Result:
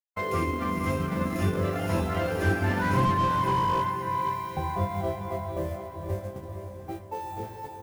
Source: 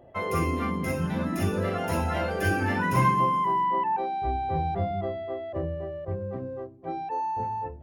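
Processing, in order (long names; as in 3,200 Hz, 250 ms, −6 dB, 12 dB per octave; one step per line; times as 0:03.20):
hold until the input has moved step −44 dBFS
noise gate −32 dBFS, range −57 dB
0:03.85–0:04.57: elliptic high-pass filter 1,800 Hz
transient designer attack 0 dB, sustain −12 dB
double-tracking delay 21 ms −5.5 dB
feedback delay with all-pass diffusion 472 ms, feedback 52%, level −5.5 dB
slew-rate limiting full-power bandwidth 81 Hz
level −1.5 dB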